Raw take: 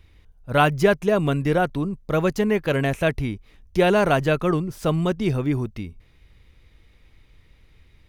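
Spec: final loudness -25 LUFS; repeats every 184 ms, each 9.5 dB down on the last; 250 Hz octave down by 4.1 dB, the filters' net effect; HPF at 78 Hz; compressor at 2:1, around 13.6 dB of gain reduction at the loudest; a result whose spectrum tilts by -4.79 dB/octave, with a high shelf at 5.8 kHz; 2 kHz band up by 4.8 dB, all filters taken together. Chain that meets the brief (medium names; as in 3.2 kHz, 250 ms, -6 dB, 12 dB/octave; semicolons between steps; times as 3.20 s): high-pass 78 Hz; peaking EQ 250 Hz -6.5 dB; peaking EQ 2 kHz +8 dB; treble shelf 5.8 kHz -9 dB; compression 2:1, threshold -38 dBFS; feedback delay 184 ms, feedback 33%, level -9.5 dB; trim +8.5 dB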